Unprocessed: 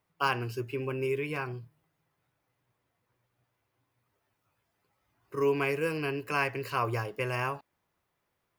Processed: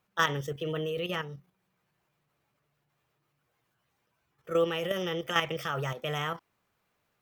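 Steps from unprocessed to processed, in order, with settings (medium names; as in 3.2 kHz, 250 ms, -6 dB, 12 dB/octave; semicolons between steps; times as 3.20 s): tape speed +19%; level held to a coarse grid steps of 9 dB; trim +4 dB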